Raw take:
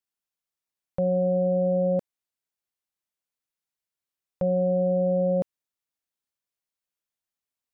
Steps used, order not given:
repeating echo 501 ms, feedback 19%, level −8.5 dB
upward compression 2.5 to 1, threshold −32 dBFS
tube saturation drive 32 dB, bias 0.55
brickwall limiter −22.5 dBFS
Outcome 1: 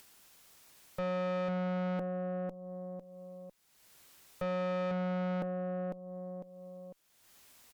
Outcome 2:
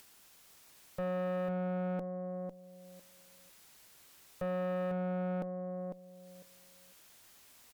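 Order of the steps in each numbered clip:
repeating echo, then upward compression, then tube saturation, then brickwall limiter
upward compression, then brickwall limiter, then repeating echo, then tube saturation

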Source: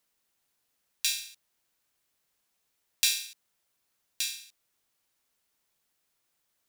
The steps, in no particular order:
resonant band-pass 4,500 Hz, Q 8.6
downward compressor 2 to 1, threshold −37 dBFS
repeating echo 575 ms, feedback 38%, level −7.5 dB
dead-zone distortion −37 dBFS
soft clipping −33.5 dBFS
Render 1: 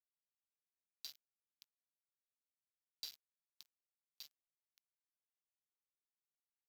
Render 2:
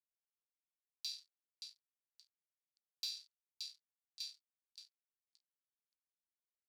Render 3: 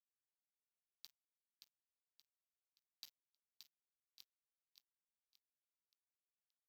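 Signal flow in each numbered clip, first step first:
resonant band-pass, then downward compressor, then repeating echo, then dead-zone distortion, then soft clipping
repeating echo, then dead-zone distortion, then resonant band-pass, then downward compressor, then soft clipping
downward compressor, then resonant band-pass, then dead-zone distortion, then repeating echo, then soft clipping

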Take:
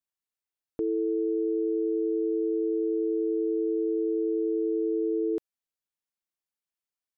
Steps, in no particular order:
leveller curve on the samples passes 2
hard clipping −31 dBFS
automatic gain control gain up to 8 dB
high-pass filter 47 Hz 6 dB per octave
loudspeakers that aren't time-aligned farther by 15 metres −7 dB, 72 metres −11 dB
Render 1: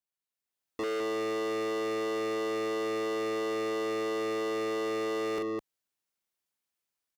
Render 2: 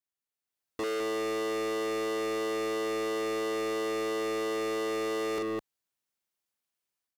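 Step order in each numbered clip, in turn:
loudspeakers that aren't time-aligned, then automatic gain control, then hard clipping, then leveller curve on the samples, then high-pass filter
automatic gain control, then loudspeakers that aren't time-aligned, then leveller curve on the samples, then high-pass filter, then hard clipping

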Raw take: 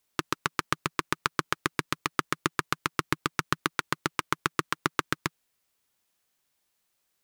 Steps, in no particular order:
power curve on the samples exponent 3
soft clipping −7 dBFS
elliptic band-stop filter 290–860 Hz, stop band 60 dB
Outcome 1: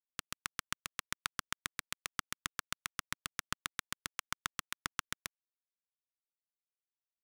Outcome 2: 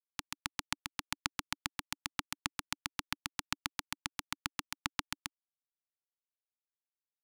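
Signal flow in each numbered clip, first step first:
elliptic band-stop filter, then soft clipping, then power curve on the samples
power curve on the samples, then elliptic band-stop filter, then soft clipping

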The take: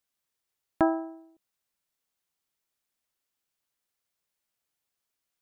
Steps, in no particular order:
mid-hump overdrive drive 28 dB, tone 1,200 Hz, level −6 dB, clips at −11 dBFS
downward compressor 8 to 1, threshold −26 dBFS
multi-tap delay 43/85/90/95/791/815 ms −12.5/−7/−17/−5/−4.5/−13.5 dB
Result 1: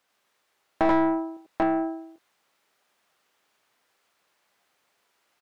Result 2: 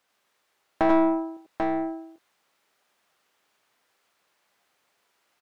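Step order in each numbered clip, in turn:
downward compressor, then multi-tap delay, then mid-hump overdrive
downward compressor, then mid-hump overdrive, then multi-tap delay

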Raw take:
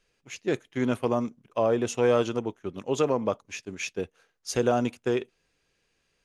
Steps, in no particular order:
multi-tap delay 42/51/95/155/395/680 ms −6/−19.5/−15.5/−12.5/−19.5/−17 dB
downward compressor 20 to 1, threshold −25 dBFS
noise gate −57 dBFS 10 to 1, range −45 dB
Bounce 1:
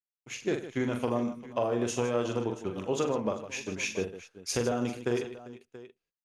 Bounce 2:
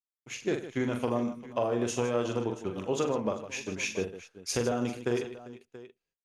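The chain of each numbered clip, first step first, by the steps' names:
downward compressor, then noise gate, then multi-tap delay
noise gate, then downward compressor, then multi-tap delay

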